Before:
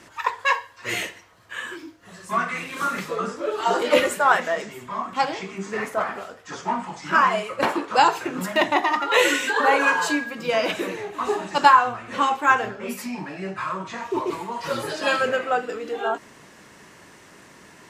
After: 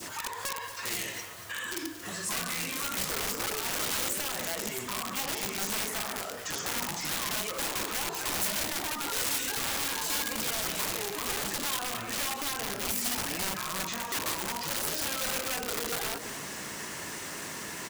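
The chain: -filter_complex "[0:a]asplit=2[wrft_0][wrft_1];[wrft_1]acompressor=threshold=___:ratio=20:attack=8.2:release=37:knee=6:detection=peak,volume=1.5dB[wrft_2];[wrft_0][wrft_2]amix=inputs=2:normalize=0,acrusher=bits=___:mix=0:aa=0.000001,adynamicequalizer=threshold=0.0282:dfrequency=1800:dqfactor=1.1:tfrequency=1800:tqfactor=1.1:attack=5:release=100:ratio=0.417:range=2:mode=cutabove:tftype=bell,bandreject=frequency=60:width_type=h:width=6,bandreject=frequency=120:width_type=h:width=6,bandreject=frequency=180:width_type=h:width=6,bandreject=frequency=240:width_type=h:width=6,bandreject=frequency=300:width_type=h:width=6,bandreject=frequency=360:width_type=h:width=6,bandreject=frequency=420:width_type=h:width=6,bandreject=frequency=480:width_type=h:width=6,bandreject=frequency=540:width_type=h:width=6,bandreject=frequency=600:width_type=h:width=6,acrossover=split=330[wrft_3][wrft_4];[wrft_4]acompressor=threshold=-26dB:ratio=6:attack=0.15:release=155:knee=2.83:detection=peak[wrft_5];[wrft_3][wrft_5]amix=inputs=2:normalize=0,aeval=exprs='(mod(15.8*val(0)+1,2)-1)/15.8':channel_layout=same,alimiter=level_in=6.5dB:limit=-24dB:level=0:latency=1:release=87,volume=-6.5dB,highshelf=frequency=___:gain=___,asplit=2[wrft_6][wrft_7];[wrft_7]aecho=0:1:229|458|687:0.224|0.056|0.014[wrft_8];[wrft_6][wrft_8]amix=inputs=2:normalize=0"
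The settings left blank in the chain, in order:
-29dB, 8, 4200, 10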